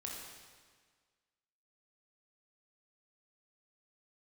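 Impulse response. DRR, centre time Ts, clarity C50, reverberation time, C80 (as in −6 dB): −2.5 dB, 83 ms, 1.0 dB, 1.6 s, 2.5 dB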